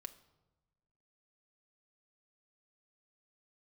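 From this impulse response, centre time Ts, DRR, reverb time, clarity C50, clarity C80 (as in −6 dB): 6 ms, 6.0 dB, 1.1 s, 15.5 dB, 18.0 dB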